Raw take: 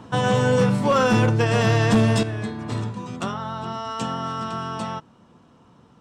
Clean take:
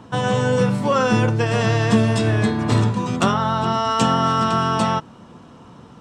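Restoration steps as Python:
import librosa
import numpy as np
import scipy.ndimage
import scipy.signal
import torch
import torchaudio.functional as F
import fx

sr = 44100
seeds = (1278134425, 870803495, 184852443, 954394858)

y = fx.fix_declip(x, sr, threshold_db=-12.0)
y = fx.gain(y, sr, db=fx.steps((0.0, 0.0), (2.23, 10.0)))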